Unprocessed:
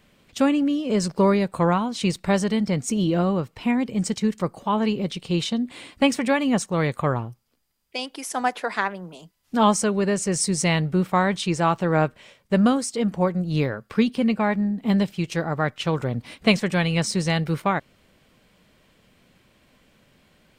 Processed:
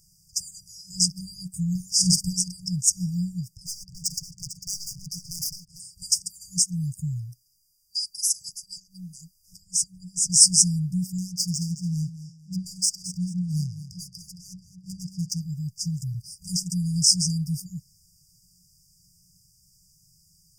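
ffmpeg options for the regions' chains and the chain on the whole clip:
-filter_complex "[0:a]asettb=1/sr,asplit=3[a][b][c];[a]atrim=end=1.754[d];[b]atrim=start=1.75:end=2.33,asetpts=PTS-STARTPTS,afade=t=in:d=0.004:c=qsin,afade=t=out:st=0.576:d=0.004:c=qsin,asplit=2[e][f];[f]adelay=50,volume=-11dB[g];[e][g]amix=inputs=2:normalize=0,atrim=end_sample=25578,acontrast=48[h];[c]atrim=start=2.326[i];[d][h]acrossfade=d=0.004:c1=hsin:c2=qsin[j];[j][i]acrossfade=d=0.004:c1=qsin:c2=hsin,asettb=1/sr,asplit=3[k][l][m];[k]atrim=end=3.564[n];[l]atrim=start=3.56:end=5.8,asetpts=PTS-STARTPTS,afade=t=in:d=0.004:c=qsin,afade=t=out:st=2.236:d=0.004:c=qsin,adynamicsmooth=sensitivity=5.5:basefreq=3k,aeval=exprs='0.0422*(abs(mod(val(0)/0.0422+3,4)-2)-1)':c=same,aecho=1:1:449:0.266,atrim=end_sample=98784[o];[m]atrim=start=5.796[p];[n][o]acrossfade=d=0.004:c1=hsin:c2=qsin[q];[q][p]acrossfade=d=0.004:c1=qsin:c2=hsin,asettb=1/sr,asplit=3[r][s][t];[r]atrim=end=8.494[u];[s]atrim=start=8.49:end=10.3,asetpts=PTS-STARTPTS,afade=t=in:d=0.004:c=qsin,afade=t=out:st=1.806:d=0.004:c=qsin,lowshelf=f=96:g=10.5,acompressor=threshold=-27dB:ratio=12:attack=3.2:release=140:knee=1:detection=peak[v];[t]atrim=start=10.296[w];[u][v]acrossfade=d=0.004:c1=hsin:c2=qsin[x];[x][w]acrossfade=d=0.004:c1=qsin:c2=hsin,asettb=1/sr,asplit=3[y][z][aa];[y]atrim=end=11.184[ab];[z]atrim=start=11.18:end=15.41,asetpts=PTS-STARTPTS,afade=t=in:d=0.004:c=qsin,afade=t=out:st=4.226:d=0.004:c=qsin,highpass=43,adynamicsmooth=sensitivity=6.5:basefreq=3.8k,aecho=1:1:219|438|657:0.224|0.0649|0.0188,atrim=end_sample=186543[ac];[aa]atrim=start=15.406[ad];[ab][ac]acrossfade=d=0.004:c1=hsin:c2=qsin[ae];[ae][ad]acrossfade=d=0.004:c1=qsin:c2=hsin,afftfilt=real='re*(1-between(b*sr/4096,190,4700))':imag='im*(1-between(b*sr/4096,190,4700))':win_size=4096:overlap=0.75,highshelf=f=3.3k:t=q:w=1.5:g=11.5,volume=-2dB"

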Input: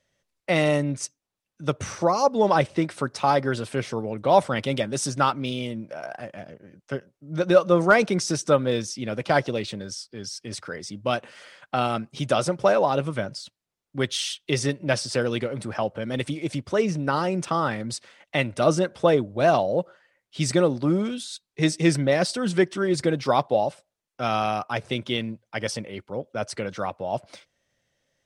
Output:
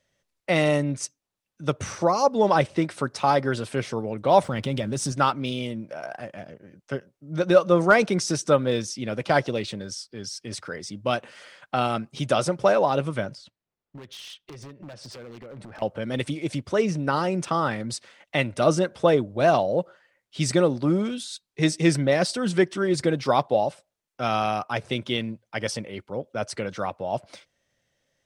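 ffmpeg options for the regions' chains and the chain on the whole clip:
-filter_complex "[0:a]asettb=1/sr,asplit=3[a][b][c];[a]atrim=end=4.434[d];[b]atrim=start=4.43:end=5.12,asetpts=PTS-STARTPTS,afade=t=in:d=0.004:c=qsin,afade=t=out:st=0.686:d=0.004:c=qsin,lowshelf=f=240:g=10,acompressor=threshold=-24dB:ratio=2.5:attack=3.2:release=140:knee=1:detection=peak,aeval=exprs='sgn(val(0))*max(abs(val(0))-0.00178,0)':c=same[e];[c]atrim=start=5.116[f];[d][e]acrossfade=d=0.004:c1=hsin:c2=qsin[g];[g][f]acrossfade=d=0.004:c1=qsin:c2=hsin,asettb=1/sr,asplit=3[h][i][j];[h]atrim=end=13.354[k];[i]atrim=start=13.35:end=15.82,asetpts=PTS-STARTPTS,afade=t=in:d=0.004:c=qsin,afade=t=out:st=2.466:d=0.004:c=qsin,lowpass=f=1.8k:p=1,acompressor=threshold=-36dB:ratio=8:attack=3.2:release=140:knee=1:detection=peak,aeval=exprs='0.0178*(abs(mod(val(0)/0.0178+3,4)-2)-1)':c=same[l];[j]atrim=start=15.816[m];[k][l]acrossfade=d=0.004:c1=hsin:c2=qsin[n];[n][m]acrossfade=d=0.004:c1=qsin:c2=hsin"

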